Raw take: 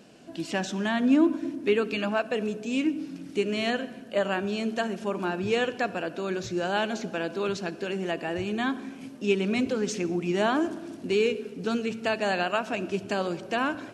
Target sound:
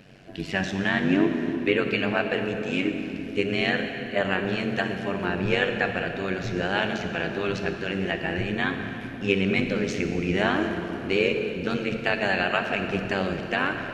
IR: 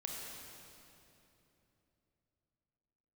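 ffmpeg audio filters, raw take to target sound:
-filter_complex "[0:a]equalizer=f=125:t=o:w=1:g=11,equalizer=f=250:t=o:w=1:g=-5,equalizer=f=1k:t=o:w=1:g=-4,equalizer=f=2k:t=o:w=1:g=8,equalizer=f=8k:t=o:w=1:g=-9,tremolo=f=95:d=0.889,asplit=2[a][b];[1:a]atrim=start_sample=2205,asetrate=40131,aresample=44100[c];[b][c]afir=irnorm=-1:irlink=0,volume=0.5dB[d];[a][d]amix=inputs=2:normalize=0"

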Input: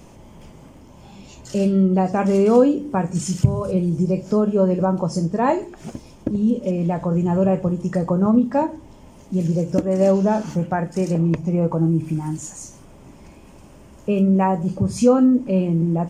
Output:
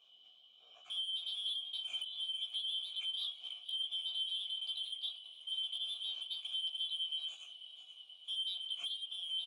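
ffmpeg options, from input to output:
-filter_complex "[0:a]afftfilt=real='real(if(lt(b,272),68*(eq(floor(b/68),0)*2+eq(floor(b/68),1)*3+eq(floor(b/68),2)*0+eq(floor(b/68),3)*1)+mod(b,68),b),0)':imag='imag(if(lt(b,272),68*(eq(floor(b/68),0)*2+eq(floor(b/68),1)*3+eq(floor(b/68),2)*0+eq(floor(b/68),3)*1)+mod(b,68),b),0)':win_size=2048:overlap=0.75,atempo=1.7,asplit=2[a][b];[b]acrusher=bits=4:mix=0:aa=0.000001,volume=-11.5dB[c];[a][c]amix=inputs=2:normalize=0,asplit=3[d][e][f];[d]bandpass=f=730:t=q:w=8,volume=0dB[g];[e]bandpass=f=1.09k:t=q:w=8,volume=-6dB[h];[f]bandpass=f=2.44k:t=q:w=8,volume=-9dB[i];[g][h][i]amix=inputs=3:normalize=0,acompressor=threshold=-39dB:ratio=4,asoftclip=type=tanh:threshold=-36.5dB,lowshelf=f=110:g=5.5,flanger=delay=15.5:depth=3.6:speed=0.33,adynamicequalizer=threshold=0.00112:dfrequency=3700:dqfactor=0.9:tfrequency=3700:tqfactor=0.9:attack=5:release=100:ratio=0.375:range=3:mode=boostabove:tftype=bell,asplit=2[j][k];[k]asplit=7[l][m][n][o][p][q][r];[l]adelay=484,afreqshift=-41,volume=-15dB[s];[m]adelay=968,afreqshift=-82,volume=-19dB[t];[n]adelay=1452,afreqshift=-123,volume=-23dB[u];[o]adelay=1936,afreqshift=-164,volume=-27dB[v];[p]adelay=2420,afreqshift=-205,volume=-31.1dB[w];[q]adelay=2904,afreqshift=-246,volume=-35.1dB[x];[r]adelay=3388,afreqshift=-287,volume=-39.1dB[y];[s][t][u][v][w][x][y]amix=inputs=7:normalize=0[z];[j][z]amix=inputs=2:normalize=0,volume=1dB"

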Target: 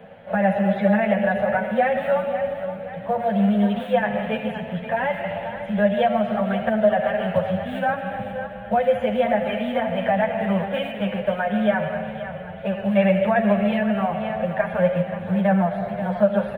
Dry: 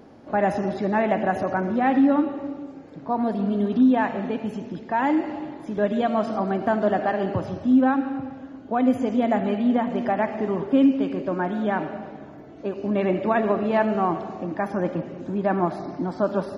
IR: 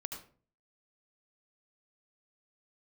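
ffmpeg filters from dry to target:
-filter_complex "[0:a]asubboost=boost=5:cutoff=110,asplit=2[a][b];[b]acrusher=bits=5:mode=log:mix=0:aa=0.000001,volume=-6dB[c];[a][c]amix=inputs=2:normalize=0,acrossover=split=200|530[d][e][f];[d]acompressor=threshold=-35dB:ratio=4[g];[e]acompressor=threshold=-27dB:ratio=4[h];[f]acompressor=threshold=-26dB:ratio=4[i];[g][h][i]amix=inputs=3:normalize=0,firequalizer=gain_entry='entry(130,0);entry(200,11);entry(290,-22);entry(510,12);entry(1100,-1);entry(1600,10);entry(3200,9);entry(5100,-21);entry(9000,-6)':delay=0.05:min_phase=1,asplit=2[j][k];[k]aecho=0:1:528|1056|1584|2112|2640:0.282|0.13|0.0596|0.0274|0.0126[l];[j][l]amix=inputs=2:normalize=0,asplit=2[m][n];[n]adelay=8.7,afreqshift=0.4[o];[m][o]amix=inputs=2:normalize=1"

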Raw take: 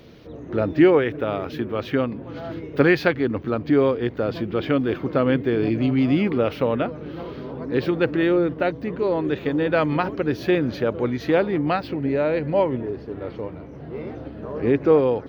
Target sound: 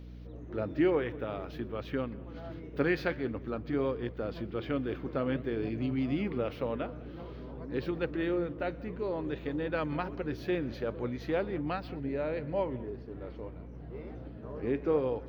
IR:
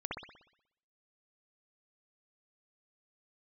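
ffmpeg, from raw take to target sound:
-filter_complex "[0:a]asplit=2[a][b];[1:a]atrim=start_sample=2205,atrim=end_sample=4410,adelay=125[c];[b][c]afir=irnorm=-1:irlink=0,volume=-21dB[d];[a][d]amix=inputs=2:normalize=0,aeval=exprs='val(0)+0.0224*(sin(2*PI*60*n/s)+sin(2*PI*2*60*n/s)/2+sin(2*PI*3*60*n/s)/3+sin(2*PI*4*60*n/s)/4+sin(2*PI*5*60*n/s)/5)':c=same,flanger=delay=0.7:depth=9.9:regen=-83:speed=0.51:shape=sinusoidal,volume=-7.5dB"

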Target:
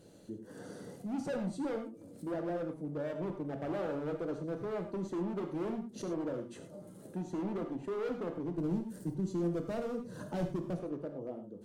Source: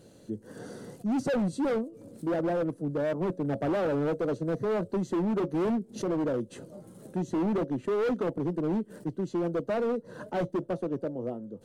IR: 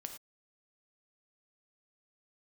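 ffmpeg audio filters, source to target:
-filter_complex "[0:a]asettb=1/sr,asplit=3[a][b][c];[a]atrim=end=8.584[d];[b]atrim=start=8.58:end=10.79,asetpts=PTS-STARTPTS,afade=t=in:d=0.004:c=qsin,afade=t=out:st=2.206:d=0.004:c=qsin,bass=f=250:g=11,treble=f=4k:g=11[e];[c]atrim=start=10.786[f];[d][e]acrossfade=d=0.004:c1=hsin:c2=qsin[g];[g][f]acrossfade=d=0.004:c1=qsin:c2=hsin,acompressor=threshold=-41dB:ratio=1.5[h];[1:a]atrim=start_sample=2205[i];[h][i]afir=irnorm=-1:irlink=0"

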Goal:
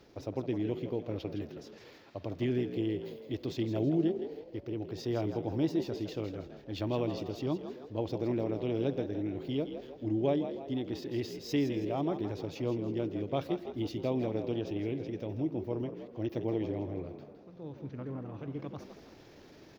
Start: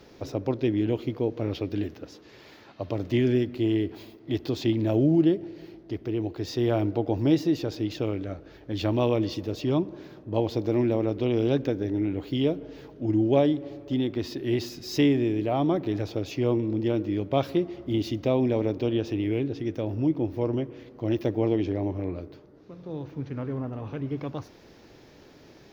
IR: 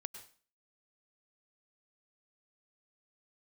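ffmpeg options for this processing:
-filter_complex "[0:a]areverse,acompressor=mode=upward:threshold=-39dB:ratio=2.5,areverse,atempo=1.3,asplit=6[a][b][c][d][e][f];[b]adelay=162,afreqshift=58,volume=-10dB[g];[c]adelay=324,afreqshift=116,volume=-17.3dB[h];[d]adelay=486,afreqshift=174,volume=-24.7dB[i];[e]adelay=648,afreqshift=232,volume=-32dB[j];[f]adelay=810,afreqshift=290,volume=-39.3dB[k];[a][g][h][i][j][k]amix=inputs=6:normalize=0,volume=-8dB"

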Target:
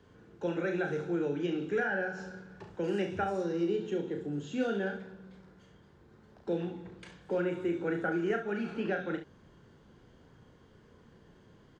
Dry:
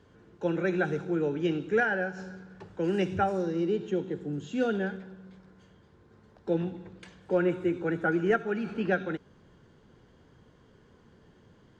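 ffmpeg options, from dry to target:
-filter_complex "[0:a]acrossover=split=240|2400[a][b][c];[a]acompressor=threshold=-42dB:ratio=4[d];[b]acompressor=threshold=-29dB:ratio=4[e];[c]acompressor=threshold=-48dB:ratio=4[f];[d][e][f]amix=inputs=3:normalize=0,aecho=1:1:35|68:0.501|0.316,volume=-1.5dB"

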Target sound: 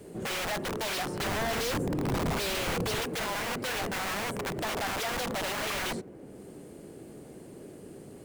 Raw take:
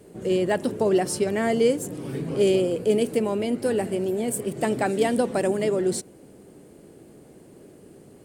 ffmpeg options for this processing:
-filter_complex "[0:a]acrossover=split=690|2500[a][b][c];[a]aeval=exprs='(mod(22.4*val(0)+1,2)-1)/22.4':c=same[d];[b]acrusher=bits=3:mode=log:mix=0:aa=0.000001[e];[c]acompressor=threshold=-54dB:ratio=6[f];[d][e][f]amix=inputs=3:normalize=0,asoftclip=type=tanh:threshold=-30.5dB,asettb=1/sr,asplit=3[g][h][i];[g]atrim=end=1.204[j];[h]atrim=start=1.2:end=3.01,asetpts=PTS-STARTPTS,afade=t=in:d=0.004:c=qsin,afade=t=out:st=1.806:d=0.004:c=qsin,lowshelf=f=360:g=7.5[k];[i]atrim=start=3.006[l];[j][k]acrossfade=d=0.004:c1=hsin:c2=qsin[m];[m][l]acrossfade=d=0.004:c1=qsin:c2=hsin,volume=2dB"

